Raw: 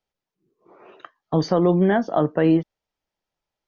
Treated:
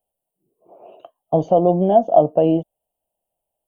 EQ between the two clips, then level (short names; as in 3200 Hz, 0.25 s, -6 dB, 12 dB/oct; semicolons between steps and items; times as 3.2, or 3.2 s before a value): EQ curve 400 Hz 0 dB, 680 Hz +13 dB, 1200 Hz -12 dB, 1900 Hz -27 dB, 2900 Hz +1 dB, 5000 Hz -28 dB, 8700 Hz +14 dB; -1.0 dB